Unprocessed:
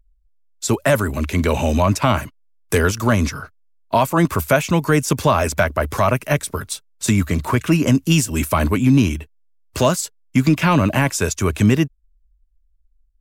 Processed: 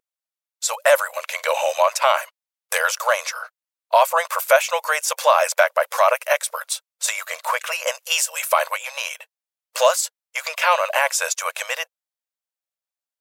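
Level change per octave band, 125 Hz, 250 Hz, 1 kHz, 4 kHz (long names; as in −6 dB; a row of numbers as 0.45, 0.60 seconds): below −40 dB, below −40 dB, +2.0 dB, +2.0 dB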